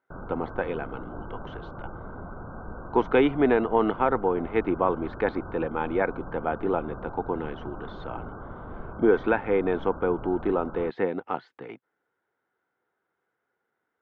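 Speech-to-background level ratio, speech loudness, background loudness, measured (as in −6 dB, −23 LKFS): 14.5 dB, −26.5 LKFS, −41.0 LKFS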